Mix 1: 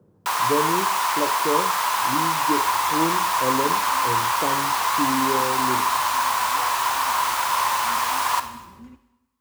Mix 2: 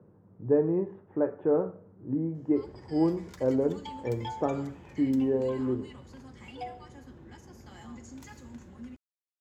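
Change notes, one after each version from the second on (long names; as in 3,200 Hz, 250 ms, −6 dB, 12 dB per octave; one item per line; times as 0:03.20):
first sound: muted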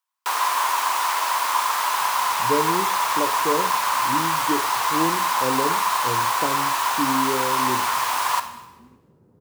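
speech: entry +2.00 s
first sound: unmuted
second sound −9.0 dB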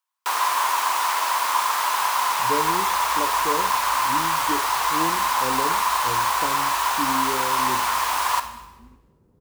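speech −4.5 dB
master: remove high-pass filter 90 Hz 24 dB per octave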